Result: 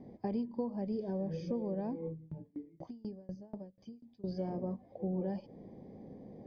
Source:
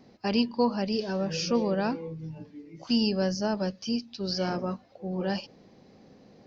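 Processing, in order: compressor 6:1, threshold -37 dBFS, peak gain reduction 17 dB; running mean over 32 samples; 2.07–4.24 dB-ramp tremolo decaying 4.1 Hz, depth 27 dB; gain +5 dB

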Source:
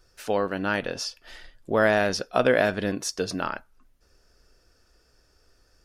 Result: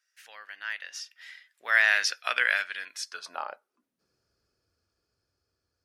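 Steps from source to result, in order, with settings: Doppler pass-by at 2.08, 17 m/s, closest 6.3 m; high-pass sweep 1900 Hz -> 92 Hz, 3.02–4.28; gain +2 dB

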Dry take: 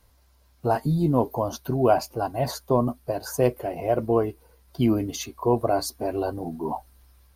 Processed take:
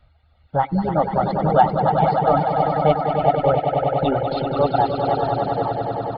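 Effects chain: downsampling 8000 Hz; comb 1.7 ms, depth 60%; varispeed +19%; swelling echo 97 ms, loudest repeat 5, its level -6 dB; reverb removal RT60 0.89 s; gain +2 dB

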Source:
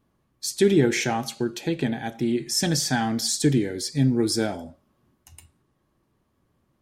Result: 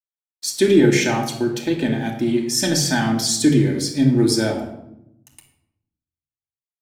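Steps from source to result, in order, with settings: low shelf 99 Hz -7.5 dB; crossover distortion -51.5 dBFS; shoebox room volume 2300 m³, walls furnished, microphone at 2.6 m; gain +3 dB

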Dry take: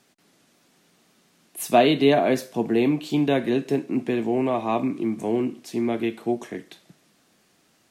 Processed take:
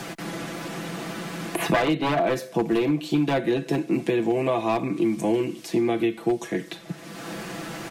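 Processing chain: wavefolder -14 dBFS; comb 6 ms, depth 72%; three-band squash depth 100%; gain -1.5 dB

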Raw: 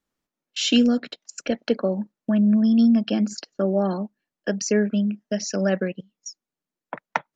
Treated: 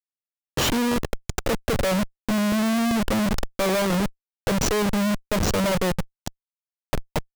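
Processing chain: graphic EQ 125/250/500/2000/4000 Hz +10/-4/+8/-8/-9 dB; vibrato 9.1 Hz 12 cents; Schmitt trigger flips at -30.5 dBFS; crackling interface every 0.39 s, samples 64, repeat, from 0.57

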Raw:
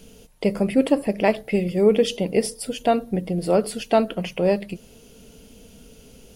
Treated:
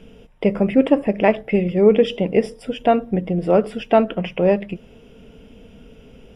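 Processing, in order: polynomial smoothing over 25 samples; gain +3.5 dB

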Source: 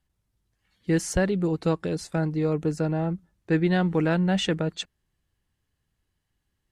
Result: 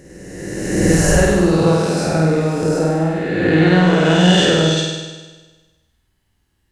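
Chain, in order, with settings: spectral swells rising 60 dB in 1.83 s; flutter echo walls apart 8.6 m, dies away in 1.3 s; gain +4 dB

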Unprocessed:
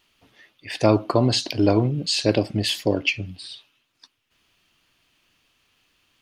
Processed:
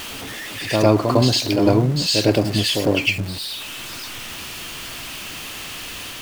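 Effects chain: zero-crossing step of -29.5 dBFS; reverse echo 0.104 s -5 dB; gain +1.5 dB

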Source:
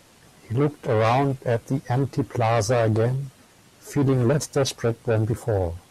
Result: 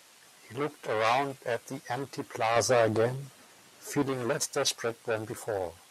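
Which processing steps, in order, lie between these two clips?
HPF 1200 Hz 6 dB/oct, from 2.56 s 470 Hz, from 4.02 s 1100 Hz

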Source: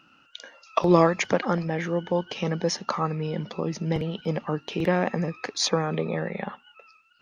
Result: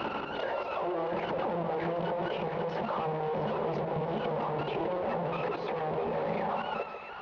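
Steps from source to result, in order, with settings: infinite clipping; HPF 42 Hz; band shelf 610 Hz +12 dB; de-hum 161.7 Hz, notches 4; level quantiser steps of 12 dB; Gaussian blur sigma 2.9 samples; split-band echo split 930 Hz, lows 0.146 s, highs 0.67 s, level -9 dB; on a send at -14 dB: reverb RT60 0.30 s, pre-delay 3 ms; on the sum: backwards sustainer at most 40 dB/s; gain -8 dB

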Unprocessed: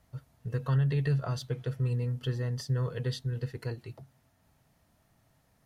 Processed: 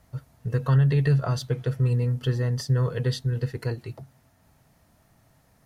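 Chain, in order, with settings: bell 3200 Hz -2.5 dB; gain +7 dB

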